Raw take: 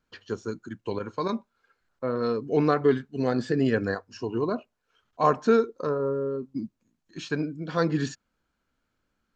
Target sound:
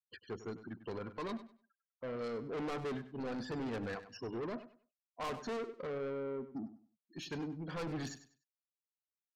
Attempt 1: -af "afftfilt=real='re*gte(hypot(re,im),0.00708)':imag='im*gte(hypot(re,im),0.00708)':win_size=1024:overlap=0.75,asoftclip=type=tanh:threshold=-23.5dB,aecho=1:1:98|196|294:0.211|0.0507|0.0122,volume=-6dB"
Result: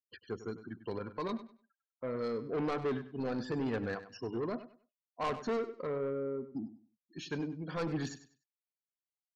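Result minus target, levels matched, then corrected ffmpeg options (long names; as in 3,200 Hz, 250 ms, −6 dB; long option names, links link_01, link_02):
soft clipping: distortion −4 dB
-af "afftfilt=real='re*gte(hypot(re,im),0.00708)':imag='im*gte(hypot(re,im),0.00708)':win_size=1024:overlap=0.75,asoftclip=type=tanh:threshold=-30.5dB,aecho=1:1:98|196|294:0.211|0.0507|0.0122,volume=-6dB"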